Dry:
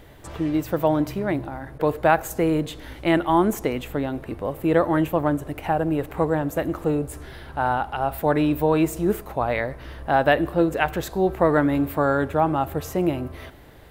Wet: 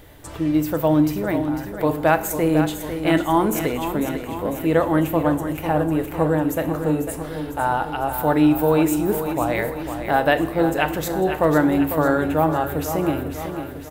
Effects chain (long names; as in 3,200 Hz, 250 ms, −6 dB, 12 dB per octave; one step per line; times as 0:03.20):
high-shelf EQ 6,400 Hz +8 dB
repeating echo 499 ms, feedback 57%, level −9 dB
feedback delay network reverb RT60 0.61 s, low-frequency decay 1.35×, high-frequency decay 0.9×, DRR 9.5 dB